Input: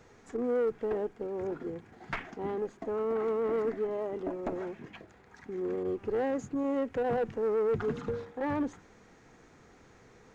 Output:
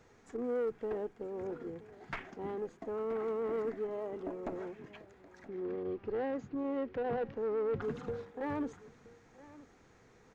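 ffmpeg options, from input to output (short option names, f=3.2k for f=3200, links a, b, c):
-filter_complex "[0:a]asettb=1/sr,asplit=3[a][b][c];[a]atrim=end=5.484[d];[b]atrim=start=5.48:end=7.82,asetpts=PTS-STARTPTS,afade=t=in:d=0.004:c=qsin,afade=t=out:st=2.336:d=0.004:c=qsin,lowpass=f=4.8k:w=0.5412,lowpass=f=4.8k:w=1.3066[e];[c]atrim=start=7.816[f];[d][e]acrossfade=d=0.004:c1=hsin:c2=qsin[g];[g][f]acrossfade=d=0.004:c1=qsin:c2=hsin,aecho=1:1:974:0.112,volume=-5dB"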